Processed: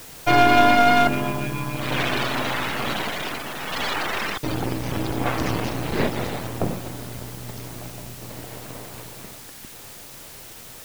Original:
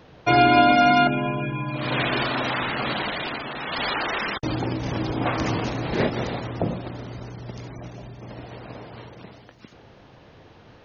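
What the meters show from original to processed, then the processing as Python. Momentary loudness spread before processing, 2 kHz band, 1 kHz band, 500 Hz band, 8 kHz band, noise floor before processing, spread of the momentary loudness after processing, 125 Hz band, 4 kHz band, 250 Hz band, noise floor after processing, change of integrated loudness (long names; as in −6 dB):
23 LU, +1.0 dB, +0.5 dB, 0.0 dB, can't be measured, −50 dBFS, 22 LU, −0.5 dB, +1.0 dB, −0.5 dB, −42 dBFS, +0.5 dB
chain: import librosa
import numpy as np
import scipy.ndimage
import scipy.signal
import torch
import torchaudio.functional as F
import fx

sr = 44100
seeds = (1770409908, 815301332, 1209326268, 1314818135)

p1 = np.where(x < 0.0, 10.0 ** (-12.0 / 20.0) * x, x)
p2 = fx.quant_dither(p1, sr, seeds[0], bits=6, dither='triangular')
y = p1 + F.gain(torch.from_numpy(p2), -6.0).numpy()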